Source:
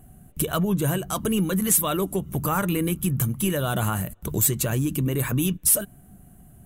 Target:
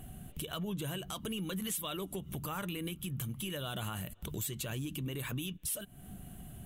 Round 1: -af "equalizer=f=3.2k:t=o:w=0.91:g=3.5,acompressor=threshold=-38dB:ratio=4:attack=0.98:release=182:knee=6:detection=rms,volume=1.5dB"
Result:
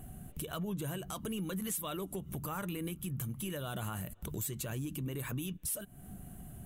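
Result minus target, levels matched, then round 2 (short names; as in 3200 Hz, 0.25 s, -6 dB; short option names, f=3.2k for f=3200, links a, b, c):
4000 Hz band -5.5 dB
-af "equalizer=f=3.2k:t=o:w=0.91:g=11.5,acompressor=threshold=-38dB:ratio=4:attack=0.98:release=182:knee=6:detection=rms,volume=1.5dB"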